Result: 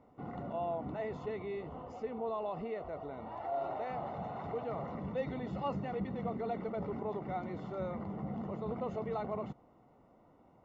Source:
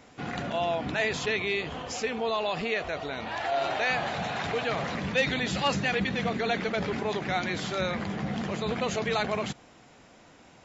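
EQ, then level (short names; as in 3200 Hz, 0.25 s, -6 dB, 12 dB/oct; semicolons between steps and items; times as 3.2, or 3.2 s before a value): polynomial smoothing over 65 samples; -7.5 dB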